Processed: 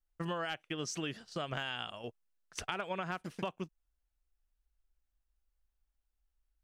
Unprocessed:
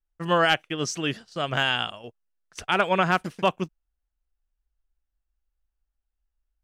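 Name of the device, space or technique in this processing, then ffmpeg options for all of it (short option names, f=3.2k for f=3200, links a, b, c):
serial compression, leveller first: -af "acompressor=threshold=-31dB:ratio=1.5,acompressor=threshold=-33dB:ratio=6,volume=-1.5dB"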